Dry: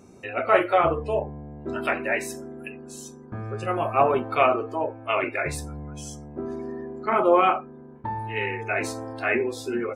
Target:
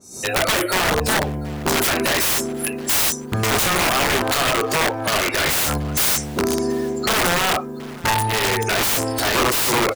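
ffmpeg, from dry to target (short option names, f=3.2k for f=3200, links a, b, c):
-filter_complex "[0:a]asettb=1/sr,asplit=3[a][b][c];[a]atrim=end=3.434[d];[b]atrim=start=3.43:end=5.78,asetpts=PTS-STARTPTS,afade=t=in:d=0.004:c=qsin,afade=t=out:st=2.346:d=0.004:c=qsin,equalizer=f=1.5k:w=0.31:g=11.5[e];[c]atrim=start=5.776[f];[d][e]acrossfade=d=0.004:c1=hsin:c2=qsin[g];[g][f]acrossfade=d=0.004:c1=qsin:c2=hsin,acompressor=threshold=-21dB:ratio=8,alimiter=limit=-21dB:level=0:latency=1:release=12,dynaudnorm=f=100:g=3:m=16dB,aexciter=amount=12.8:drive=6.1:freq=4k,aeval=exprs='(mod(2.66*val(0)+1,2)-1)/2.66':c=same,asplit=2[h][i];[i]adelay=728,lowpass=f=4.4k:p=1,volume=-20dB,asplit=2[j][k];[k]adelay=728,lowpass=f=4.4k:p=1,volume=0.37,asplit=2[l][m];[m]adelay=728,lowpass=f=4.4k:p=1,volume=0.37[n];[h][j][l][n]amix=inputs=4:normalize=0,adynamicequalizer=threshold=0.0355:dfrequency=3900:dqfactor=0.7:tfrequency=3900:tqfactor=0.7:attack=5:release=100:ratio=0.375:range=1.5:mode=cutabove:tftype=highshelf,volume=-4dB"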